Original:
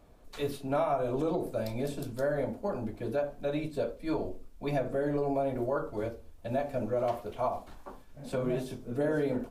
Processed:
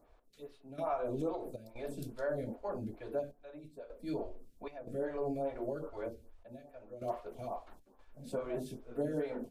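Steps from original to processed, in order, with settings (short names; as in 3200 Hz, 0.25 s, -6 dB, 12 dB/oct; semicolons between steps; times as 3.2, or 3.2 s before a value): step gate "x...xxxx.xxxxxxx" 77 bpm -12 dB; photocell phaser 2.4 Hz; gain -3.5 dB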